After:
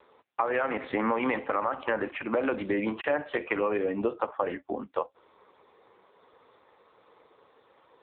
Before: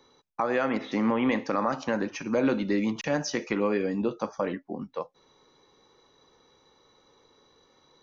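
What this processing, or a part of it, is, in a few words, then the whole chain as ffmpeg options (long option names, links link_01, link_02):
voicemail: -af "highpass=420,lowpass=3000,acompressor=threshold=-31dB:ratio=6,volume=8.5dB" -ar 8000 -c:a libopencore_amrnb -b:a 5900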